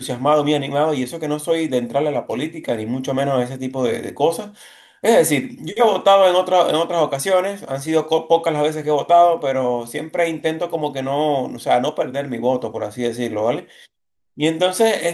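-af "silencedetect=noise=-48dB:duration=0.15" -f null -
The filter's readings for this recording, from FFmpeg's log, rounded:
silence_start: 13.86
silence_end: 14.37 | silence_duration: 0.51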